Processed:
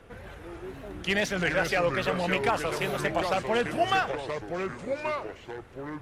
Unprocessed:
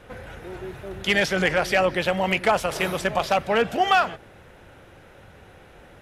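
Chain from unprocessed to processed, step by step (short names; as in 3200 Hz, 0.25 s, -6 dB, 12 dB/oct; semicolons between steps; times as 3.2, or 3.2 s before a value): wow and flutter 120 cents; phaser 0.86 Hz, delay 2.6 ms, feedback 21%; echoes that change speed 0.112 s, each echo -4 st, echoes 2, each echo -6 dB; gain -6 dB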